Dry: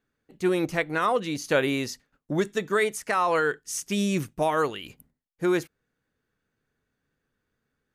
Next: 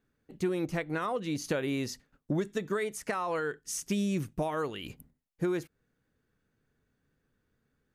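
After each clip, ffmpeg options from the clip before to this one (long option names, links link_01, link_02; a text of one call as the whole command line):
ffmpeg -i in.wav -af "acompressor=threshold=-31dB:ratio=4,lowshelf=frequency=430:gain=6.5,volume=-1.5dB" out.wav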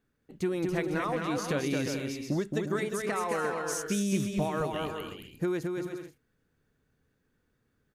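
ffmpeg -i in.wav -af "aecho=1:1:220|352|431.2|478.7|507.2:0.631|0.398|0.251|0.158|0.1" out.wav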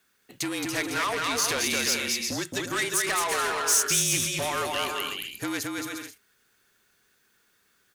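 ffmpeg -i in.wav -filter_complex "[0:a]afreqshift=-41,asplit=2[link_01][link_02];[link_02]highpass=frequency=720:poles=1,volume=19dB,asoftclip=type=tanh:threshold=-17dB[link_03];[link_01][link_03]amix=inputs=2:normalize=0,lowpass=frequency=3500:poles=1,volume=-6dB,crystalizer=i=8:c=0,volume=-6.5dB" out.wav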